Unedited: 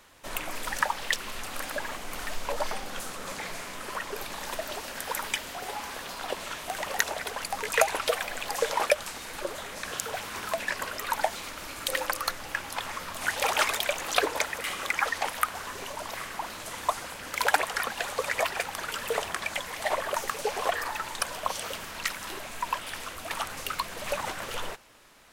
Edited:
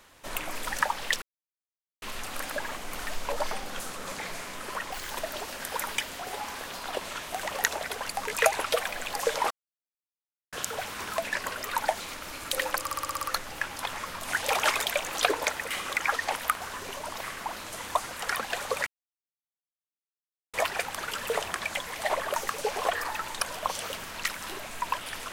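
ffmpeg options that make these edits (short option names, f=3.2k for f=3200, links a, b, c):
-filter_complex "[0:a]asplit=15[a][b][c][d][e][f][g][h][i][j][k][l][m][n][o];[a]atrim=end=1.22,asetpts=PTS-STARTPTS,afade=t=out:st=1.216:d=0.004:c=hsin,apad=pad_dur=0.8[p];[b]atrim=start=1.22:end=4.124,asetpts=PTS-STARTPTS,afade=t=in:d=0.004:c=hsin[q];[c]atrim=start=4.12:end=4.46,asetpts=PTS-STARTPTS,asetrate=80703,aresample=44100,atrim=end_sample=8193,asetpts=PTS-STARTPTS[r];[d]atrim=start=4.456:end=8.86,asetpts=PTS-STARTPTS,afade=t=out:st=4.4:d=0.004:c=hsin[s];[e]atrim=start=8.86:end=9.88,asetpts=PTS-STARTPTS,volume=0[t];[f]atrim=start=9.88:end=12.222,asetpts=PTS-STARTPTS,afade=t=in:d=0.004:c=hsin[u];[g]atrim=start=12.158:end=12.222[v];[h]atrim=start=12.158:end=12.222[w];[i]atrim=start=12.158:end=12.222[x];[j]atrim=start=12.158:end=12.222[y];[k]atrim=start=12.158:end=12.222[z];[l]atrim=start=12.158:end=12.222[aa];[m]atrim=start=12.158:end=17.122[ab];[n]atrim=start=17.658:end=18.34,asetpts=PTS-STARTPTS,afade=t=out:st=0.678:d=0.004:c=hsin,apad=pad_dur=1.67[ac];[o]atrim=start=18.34,asetpts=PTS-STARTPTS,afade=t=in:d=0.004:c=hsin[ad];[p][q]concat=n=2:v=0:a=1[ae];[ae][r]acrossfade=d=0.004:c1=hsin:c2=hsin[af];[s][t][u]concat=n=3:v=0:a=1[ag];[af][ag]acrossfade=d=0.004:c1=hsin:c2=hsin[ah];[ah][v]acrossfade=d=0.004:c1=hsin:c2=hsin[ai];[ai][w]acrossfade=d=0.004:c1=hsin:c2=hsin[aj];[aj][x]acrossfade=d=0.004:c1=hsin:c2=hsin[ak];[ak][y]acrossfade=d=0.004:c1=hsin:c2=hsin[al];[al][z]acrossfade=d=0.004:c1=hsin:c2=hsin[am];[am][aa]acrossfade=d=0.004:c1=hsin:c2=hsin[an];[an][ab]acrossfade=d=0.004:c1=hsin:c2=hsin[ao];[ac][ad]concat=n=2:v=0:a=1[ap];[ao][ap]acrossfade=d=0.004:c1=hsin:c2=hsin"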